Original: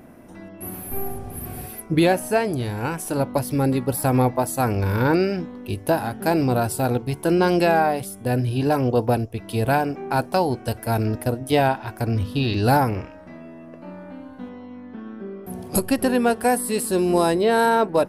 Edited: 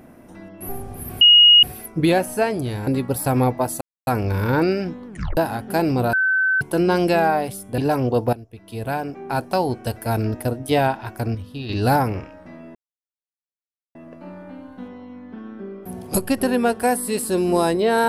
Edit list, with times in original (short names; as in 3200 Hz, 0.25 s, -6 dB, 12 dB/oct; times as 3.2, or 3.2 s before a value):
0.69–1.05 cut
1.57 add tone 2880 Hz -7 dBFS 0.42 s
2.81–3.65 cut
4.59 insert silence 0.26 s
5.59 tape stop 0.30 s
6.65–7.13 bleep 1530 Hz -15.5 dBFS
8.3–8.59 cut
9.14–10.46 fade in, from -16.5 dB
11.8–12.86 dip -9 dB, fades 0.36 s logarithmic
13.56 insert silence 1.20 s